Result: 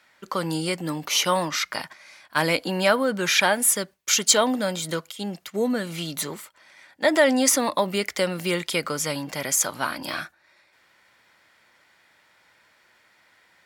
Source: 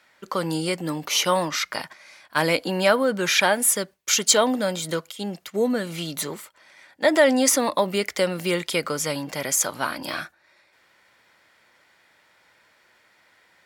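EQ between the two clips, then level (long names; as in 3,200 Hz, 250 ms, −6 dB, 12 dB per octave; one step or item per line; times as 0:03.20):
parametric band 470 Hz −2.5 dB 1 octave
0.0 dB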